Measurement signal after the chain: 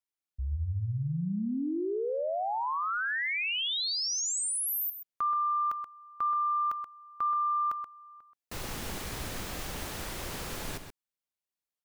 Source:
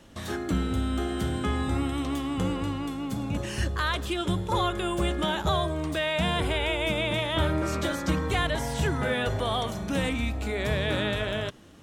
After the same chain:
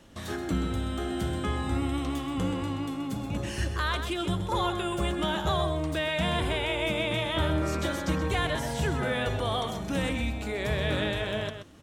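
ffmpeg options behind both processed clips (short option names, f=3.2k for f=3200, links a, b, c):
-filter_complex "[0:a]asplit=2[a][b];[b]adelay=128.3,volume=-8dB,highshelf=f=4k:g=-2.89[c];[a][c]amix=inputs=2:normalize=0,acontrast=70,volume=-8.5dB"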